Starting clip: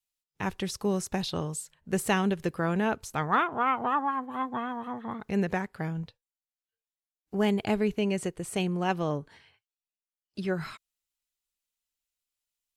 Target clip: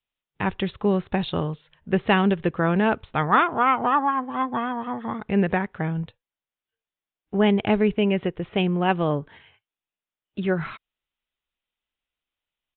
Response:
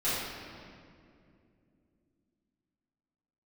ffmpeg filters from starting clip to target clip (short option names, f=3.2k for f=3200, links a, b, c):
-af "aresample=8000,aresample=44100,volume=6.5dB"